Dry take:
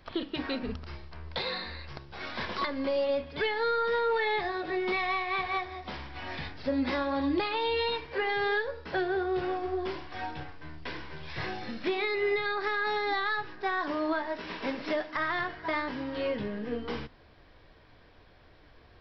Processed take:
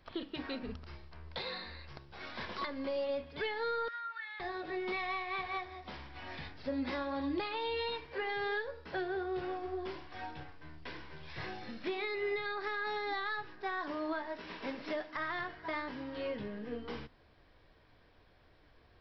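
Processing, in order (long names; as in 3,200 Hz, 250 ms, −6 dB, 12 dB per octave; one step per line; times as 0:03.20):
0:03.88–0:04.40: four-pole ladder high-pass 1,300 Hz, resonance 65%
level −7 dB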